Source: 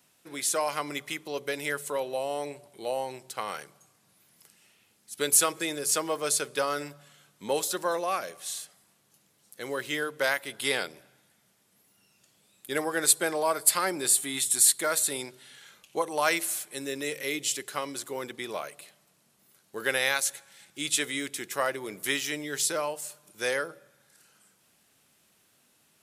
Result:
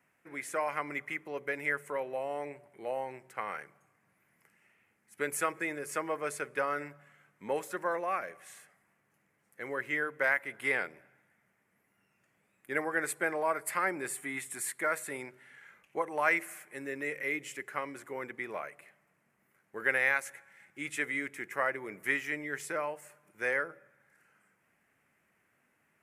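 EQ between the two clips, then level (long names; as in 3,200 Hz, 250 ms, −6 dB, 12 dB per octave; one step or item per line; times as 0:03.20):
high shelf with overshoot 2,800 Hz −11 dB, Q 3
−5.0 dB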